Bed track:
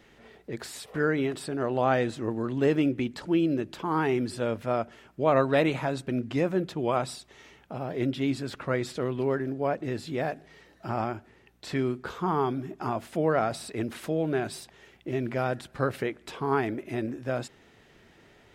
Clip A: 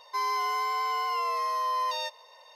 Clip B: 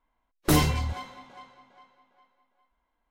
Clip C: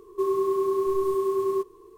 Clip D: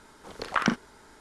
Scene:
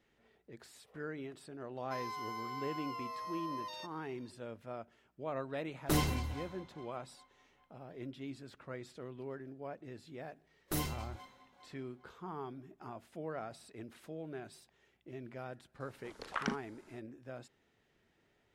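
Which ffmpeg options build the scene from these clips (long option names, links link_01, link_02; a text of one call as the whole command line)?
ffmpeg -i bed.wav -i cue0.wav -i cue1.wav -i cue2.wav -i cue3.wav -filter_complex "[2:a]asplit=2[link_01][link_02];[0:a]volume=-17dB[link_03];[link_01]aecho=1:1:168|336|504:0.168|0.0504|0.0151[link_04];[link_02]highshelf=frequency=10000:gain=9.5[link_05];[1:a]atrim=end=2.55,asetpts=PTS-STARTPTS,volume=-14dB,afade=type=in:duration=0.004:curve=hsin,afade=type=out:start_time=2.546:duration=0.004:curve=hsin,adelay=1770[link_06];[link_04]atrim=end=3.1,asetpts=PTS-STARTPTS,volume=-9.5dB,afade=type=in:duration=0.004:curve=hsin,afade=type=out:start_time=3.096:duration=0.004:curve=hsin,adelay=238581S[link_07];[link_05]atrim=end=3.1,asetpts=PTS-STARTPTS,volume=-15.5dB,afade=type=in:duration=0.004:curve=hsin,afade=type=out:start_time=3.096:duration=0.004:curve=hsin,adelay=10230[link_08];[4:a]atrim=end=1.2,asetpts=PTS-STARTPTS,volume=-11.5dB,afade=type=in:duration=0.004:curve=hsin,afade=type=out:start_time=1.196:duration=0.004:curve=hsin,adelay=15800[link_09];[link_03][link_06][link_07][link_08][link_09]amix=inputs=5:normalize=0" out.wav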